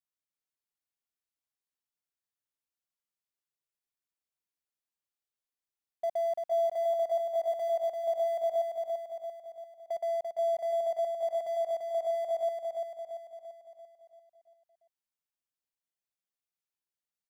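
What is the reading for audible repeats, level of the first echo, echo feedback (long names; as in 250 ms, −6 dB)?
6, −4.0 dB, 53%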